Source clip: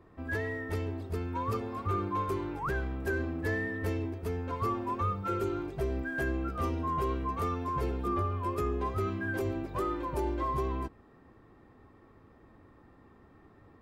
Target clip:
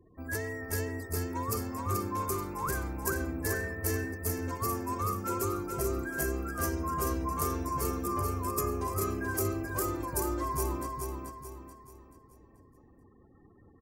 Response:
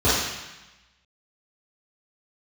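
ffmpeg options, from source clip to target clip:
-filter_complex "[0:a]aexciter=amount=9.1:drive=5.5:freq=5100,afftfilt=real='re*gte(hypot(re,im),0.00251)':imag='im*gte(hypot(re,im),0.00251)':win_size=1024:overlap=0.75,asplit=2[s0][s1];[s1]aecho=0:1:433|866|1299|1732|2165:0.596|0.232|0.0906|0.0353|0.0138[s2];[s0][s2]amix=inputs=2:normalize=0,volume=0.794"

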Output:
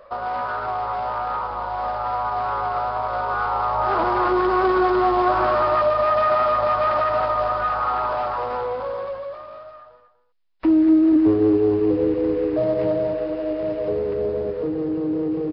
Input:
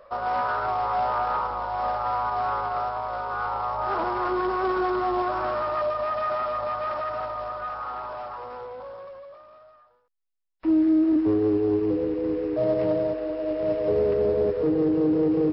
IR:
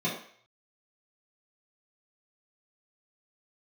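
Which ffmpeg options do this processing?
-filter_complex "[0:a]acompressor=threshold=0.0316:ratio=2,aresample=11025,aresample=44100,dynaudnorm=f=390:g=17:m=2.37,asplit=2[s0][s1];[s1]aecho=0:1:243:0.251[s2];[s0][s2]amix=inputs=2:normalize=0,volume=1.5"

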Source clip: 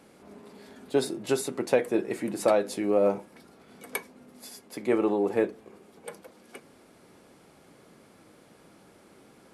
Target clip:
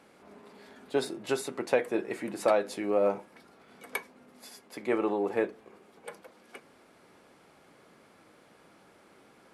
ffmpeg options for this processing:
-af "equalizer=f=1500:w=0.34:g=7.5,volume=0.447"

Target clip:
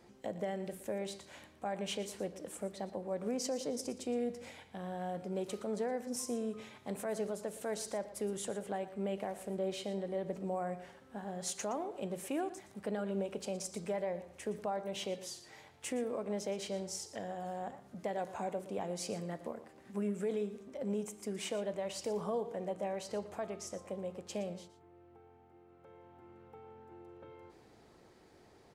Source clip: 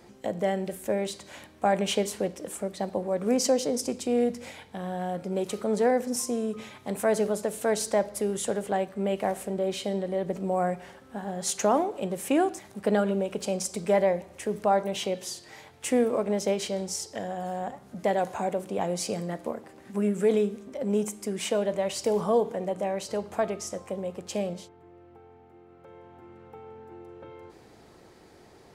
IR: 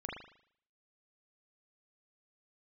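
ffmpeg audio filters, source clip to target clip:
-af "highshelf=f=11000:g=-4.5,alimiter=limit=0.106:level=0:latency=1:release=217,aecho=1:1:117:0.178,volume=0.398"

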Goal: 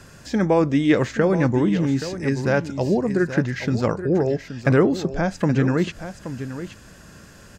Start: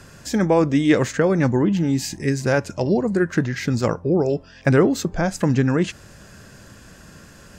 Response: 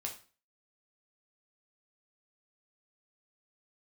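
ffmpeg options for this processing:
-filter_complex "[0:a]aecho=1:1:825:0.266,acrossover=split=5100[s0][s1];[s1]acompressor=threshold=0.00398:ratio=4:attack=1:release=60[s2];[s0][s2]amix=inputs=2:normalize=0,volume=0.891"

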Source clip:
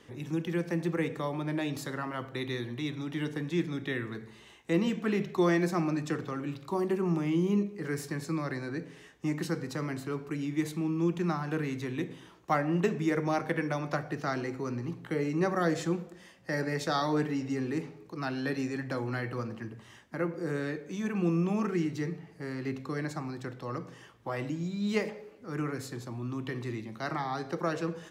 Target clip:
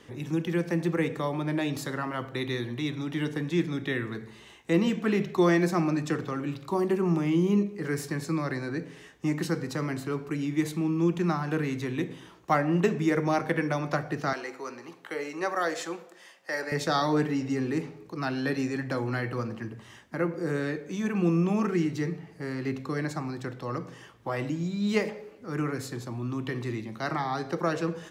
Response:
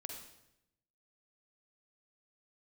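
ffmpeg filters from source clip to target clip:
-filter_complex "[0:a]asettb=1/sr,asplit=3[s0][s1][s2];[s0]atrim=end=14.334[s3];[s1]atrim=start=14.33:end=16.72,asetpts=PTS-STARTPTS,afade=t=in:d=0.004:c=qsin,afade=t=out:st=2.386:d=0.004:c=qsin,highpass=550[s4];[s2]atrim=start=16.716[s5];[s3][s4]acrossfade=d=0.004:c1=hsin:c2=qsin[s6];[s6][s5]acrossfade=d=0.004:c1=qsin:c2=hsin,volume=1.5"

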